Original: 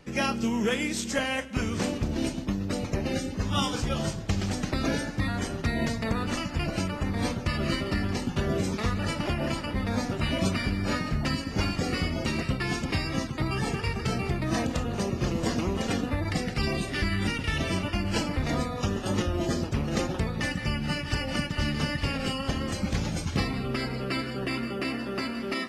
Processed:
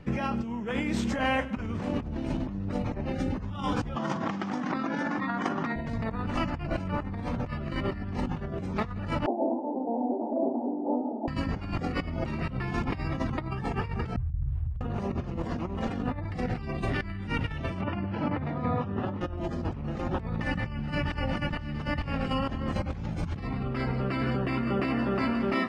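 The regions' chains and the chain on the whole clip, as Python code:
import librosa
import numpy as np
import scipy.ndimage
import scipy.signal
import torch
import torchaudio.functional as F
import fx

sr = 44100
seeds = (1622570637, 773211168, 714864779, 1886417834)

y = fx.chain(x, sr, fx.cabinet(low_hz=210.0, low_slope=24, high_hz=6700.0, hz=(420.0, 620.0, 1100.0, 2600.0, 4200.0), db=(-8, -6, 5, -4, -6)),
    fx.env_flatten(amount_pct=100), at=(3.96, 5.76))
y = fx.chain(y, sr, fx.cvsd(bps=16000),
    fx.cheby1_bandpass(low_hz=240.0, high_hz=880.0, order=5), at=(9.26, 11.28))
y = fx.chain(y, sr, fx.cheby2_bandstop(low_hz=190.0, high_hz=6800.0, order=4, stop_db=40),
    fx.over_compress(threshold_db=-35.0, ratio=-0.5),
    fx.running_max(window=9), at=(14.16, 14.81))
y = fx.chain(y, sr, fx.highpass(hz=90.0, slope=24),
    fx.air_absorb(metres=240.0), at=(17.81, 19.21))
y = fx.bass_treble(y, sr, bass_db=8, treble_db=-14)
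y = fx.over_compress(y, sr, threshold_db=-29.0, ratio=-1.0)
y = fx.dynamic_eq(y, sr, hz=900.0, q=1.0, threshold_db=-47.0, ratio=4.0, max_db=7)
y = F.gain(torch.from_numpy(y), -3.0).numpy()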